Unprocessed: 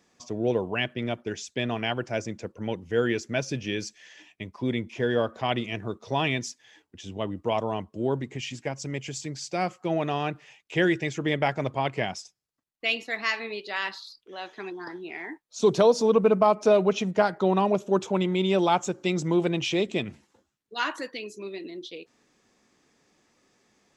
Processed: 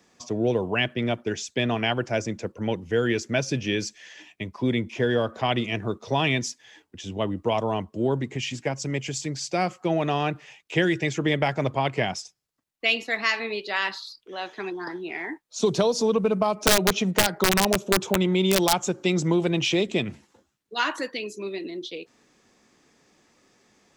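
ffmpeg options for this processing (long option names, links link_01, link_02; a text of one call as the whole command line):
ffmpeg -i in.wav -filter_complex "[0:a]asettb=1/sr,asplit=3[link_01][link_02][link_03];[link_01]atrim=end=16.544[link_04];[link_02]atrim=start=16.54:end=18.73,asetpts=PTS-STARTPTS,afade=type=in:duration=0.004:curve=qsin,afade=type=out:start_time=2.186:duration=0.004:curve=qsin,aeval=exprs='(mod(4.47*val(0)+1,2)-1)/4.47':channel_layout=same[link_05];[link_03]atrim=start=18.726[link_06];[link_04][link_05]acrossfade=duration=0.004:curve1=hsin:curve2=qsin[link_07];[link_07][link_06]acrossfade=duration=0.004:curve1=qsin:curve2=hsin,acrossover=split=160|3000[link_08][link_09][link_10];[link_09]acompressor=threshold=-24dB:ratio=6[link_11];[link_08][link_11][link_10]amix=inputs=3:normalize=0,volume=4.5dB" out.wav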